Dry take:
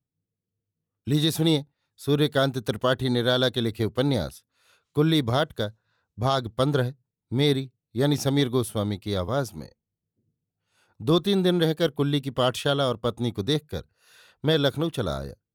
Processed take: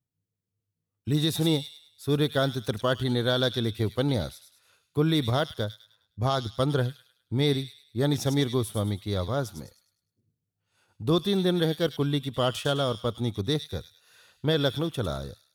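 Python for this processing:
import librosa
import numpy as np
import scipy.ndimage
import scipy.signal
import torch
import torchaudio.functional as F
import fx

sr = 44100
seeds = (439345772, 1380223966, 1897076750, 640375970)

y = fx.peak_eq(x, sr, hz=100.0, db=4.5, octaves=0.7)
y = fx.echo_wet_highpass(y, sr, ms=103, feedback_pct=39, hz=3100.0, wet_db=-6.0)
y = y * 10.0 ** (-3.0 / 20.0)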